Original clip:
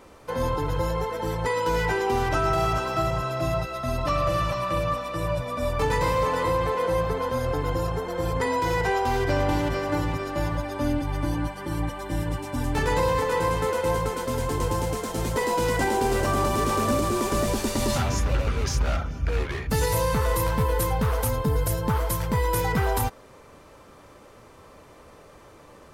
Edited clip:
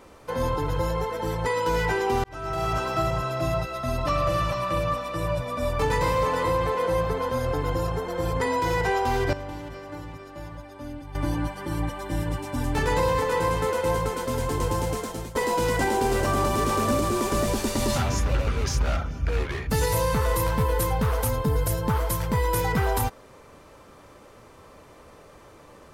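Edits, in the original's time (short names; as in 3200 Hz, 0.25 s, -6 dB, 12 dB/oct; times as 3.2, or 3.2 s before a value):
2.24–2.81 fade in linear
9.33–11.15 gain -12 dB
14.99–15.35 fade out, to -16 dB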